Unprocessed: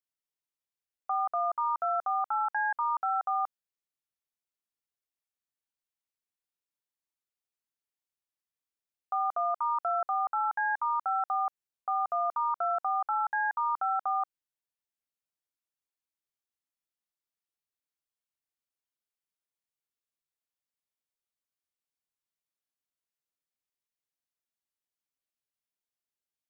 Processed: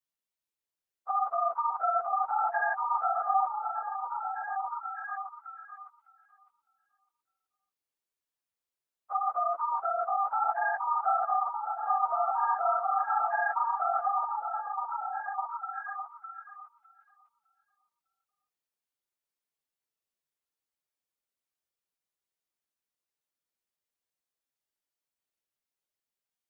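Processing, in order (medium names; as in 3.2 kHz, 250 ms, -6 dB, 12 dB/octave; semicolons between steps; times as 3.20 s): phase randomisation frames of 50 ms; on a send: repeats whose band climbs or falls 606 ms, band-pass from 430 Hz, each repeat 0.7 oct, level -1 dB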